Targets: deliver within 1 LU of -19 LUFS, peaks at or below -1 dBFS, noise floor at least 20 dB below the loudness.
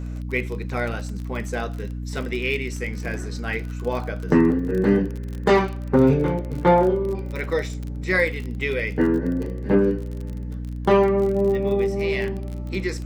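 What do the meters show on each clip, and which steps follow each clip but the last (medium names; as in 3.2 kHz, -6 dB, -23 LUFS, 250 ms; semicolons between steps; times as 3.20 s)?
tick rate 36 per s; hum 60 Hz; highest harmonic 300 Hz; hum level -28 dBFS; loudness -23.0 LUFS; peak level -6.0 dBFS; loudness target -19.0 LUFS
-> de-click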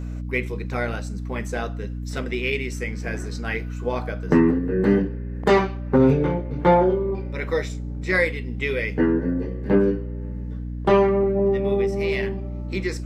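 tick rate 0 per s; hum 60 Hz; highest harmonic 300 Hz; hum level -28 dBFS
-> hum notches 60/120/180/240/300 Hz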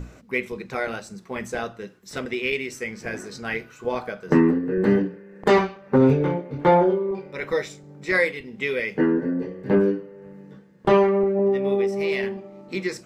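hum not found; loudness -23.0 LUFS; peak level -6.0 dBFS; loudness target -19.0 LUFS
-> trim +4 dB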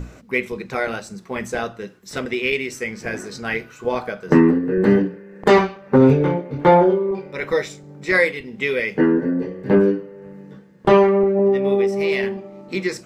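loudness -19.0 LUFS; peak level -2.0 dBFS; noise floor -45 dBFS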